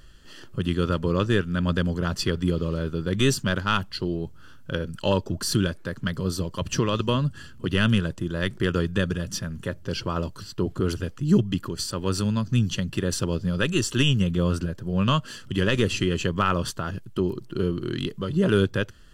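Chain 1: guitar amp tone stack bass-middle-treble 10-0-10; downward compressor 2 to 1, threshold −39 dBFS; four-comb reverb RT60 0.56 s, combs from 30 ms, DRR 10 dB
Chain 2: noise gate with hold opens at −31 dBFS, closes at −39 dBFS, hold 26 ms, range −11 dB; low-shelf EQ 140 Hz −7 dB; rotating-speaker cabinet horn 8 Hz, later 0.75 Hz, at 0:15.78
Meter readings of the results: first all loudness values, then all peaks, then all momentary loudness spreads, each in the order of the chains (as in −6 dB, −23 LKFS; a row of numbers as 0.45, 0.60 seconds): −39.5, −29.0 LKFS; −21.0, −10.0 dBFS; 8, 8 LU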